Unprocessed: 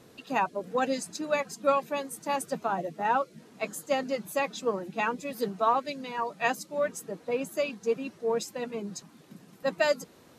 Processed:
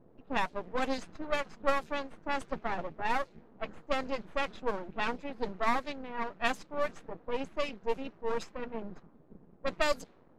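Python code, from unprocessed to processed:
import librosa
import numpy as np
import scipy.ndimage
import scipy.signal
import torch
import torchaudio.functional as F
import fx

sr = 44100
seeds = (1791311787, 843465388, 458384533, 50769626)

y = np.maximum(x, 0.0)
y = fx.env_lowpass(y, sr, base_hz=670.0, full_db=-24.0)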